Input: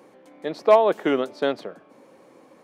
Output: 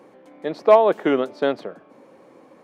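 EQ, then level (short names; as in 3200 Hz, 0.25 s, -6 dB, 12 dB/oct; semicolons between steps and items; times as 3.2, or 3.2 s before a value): high shelf 3700 Hz -7.5 dB; +2.5 dB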